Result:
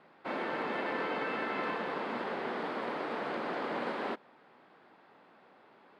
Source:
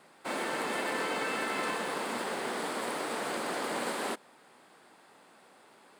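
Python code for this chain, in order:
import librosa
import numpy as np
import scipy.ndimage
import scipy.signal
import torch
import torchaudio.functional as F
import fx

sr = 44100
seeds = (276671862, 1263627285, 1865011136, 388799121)

y = fx.air_absorb(x, sr, metres=300.0)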